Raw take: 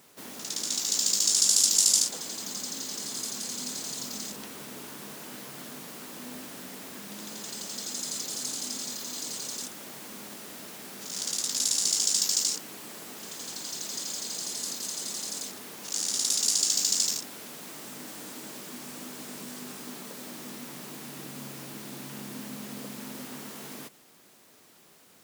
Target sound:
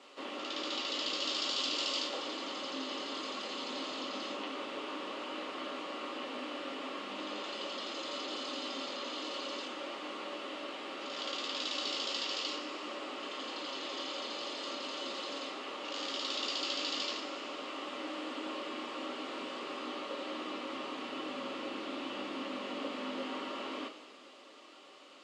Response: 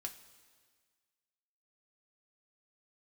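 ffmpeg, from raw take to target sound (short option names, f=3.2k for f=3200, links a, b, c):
-filter_complex "[0:a]highpass=f=280:w=0.5412,highpass=f=280:w=1.3066,equalizer=f=310:t=q:w=4:g=5,equalizer=f=560:t=q:w=4:g=5,equalizer=f=1.2k:t=q:w=4:g=8,equalizer=f=1.6k:t=q:w=4:g=-5,equalizer=f=2.9k:t=q:w=4:g=8,equalizer=f=5.8k:t=q:w=4:g=-7,lowpass=f=5.9k:w=0.5412,lowpass=f=5.9k:w=1.3066,acontrast=87[a];[1:a]atrim=start_sample=2205,asetrate=35280,aresample=44100[b];[a][b]afir=irnorm=-1:irlink=0,acrossover=split=3800[c][d];[d]acompressor=threshold=-56dB:ratio=4:attack=1:release=60[e];[c][e]amix=inputs=2:normalize=0,volume=-3dB"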